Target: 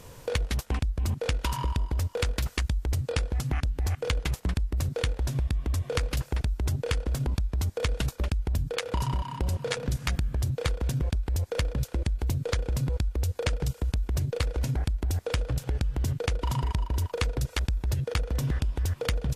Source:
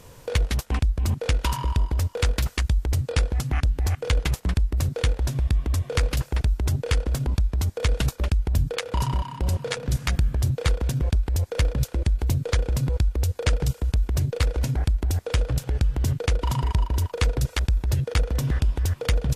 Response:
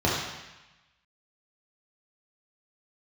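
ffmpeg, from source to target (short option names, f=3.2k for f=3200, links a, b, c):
-af "acompressor=threshold=-24dB:ratio=6"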